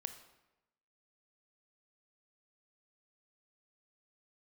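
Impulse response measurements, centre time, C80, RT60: 12 ms, 12.5 dB, 0.95 s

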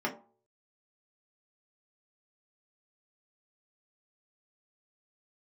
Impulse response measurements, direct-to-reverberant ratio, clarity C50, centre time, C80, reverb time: -2.5 dB, 12.5 dB, 14 ms, 16.5 dB, 0.45 s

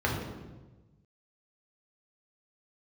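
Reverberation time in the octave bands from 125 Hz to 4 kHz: 1.7 s, 1.4 s, 1.3 s, 1.1 s, 0.95 s, 0.85 s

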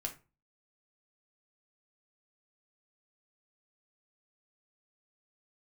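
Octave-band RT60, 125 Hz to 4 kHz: 0.45 s, 0.40 s, 0.30 s, 0.30 s, 0.25 s, 0.20 s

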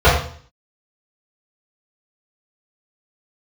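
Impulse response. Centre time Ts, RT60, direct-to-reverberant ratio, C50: 42 ms, 0.50 s, -12.0 dB, 3.5 dB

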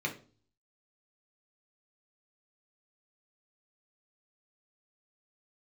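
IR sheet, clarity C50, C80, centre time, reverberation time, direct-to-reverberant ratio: 12.5 dB, 17.5 dB, 13 ms, 0.40 s, 0.0 dB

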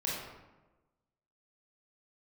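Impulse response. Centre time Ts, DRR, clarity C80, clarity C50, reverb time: 77 ms, -5.5 dB, 2.5 dB, -0.5 dB, 1.1 s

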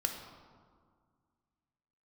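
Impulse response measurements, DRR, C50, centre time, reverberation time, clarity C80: 3.0 dB, 5.5 dB, 40 ms, 1.9 s, 7.0 dB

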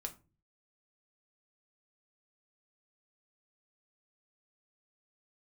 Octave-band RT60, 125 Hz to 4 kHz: 0.65 s, 0.50 s, 0.35 s, 0.30 s, 0.25 s, 0.20 s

